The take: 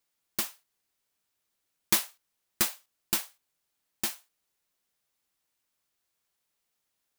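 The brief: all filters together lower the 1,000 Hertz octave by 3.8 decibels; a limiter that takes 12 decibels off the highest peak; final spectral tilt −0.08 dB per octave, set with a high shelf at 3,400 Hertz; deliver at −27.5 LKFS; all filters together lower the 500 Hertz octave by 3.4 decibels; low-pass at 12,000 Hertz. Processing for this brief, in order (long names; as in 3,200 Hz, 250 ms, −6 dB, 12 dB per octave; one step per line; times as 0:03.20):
low-pass filter 12,000 Hz
parametric band 500 Hz −4.5 dB
parametric band 1,000 Hz −4 dB
high-shelf EQ 3,400 Hz +3 dB
level +9.5 dB
brickwall limiter −10.5 dBFS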